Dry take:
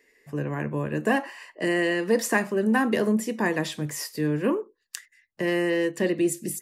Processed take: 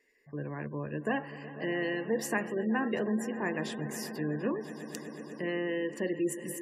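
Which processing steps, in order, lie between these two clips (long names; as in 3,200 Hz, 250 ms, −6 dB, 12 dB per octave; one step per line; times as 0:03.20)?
echo that builds up and dies away 123 ms, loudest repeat 5, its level −17.5 dB
gate on every frequency bin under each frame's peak −30 dB strong
level −8.5 dB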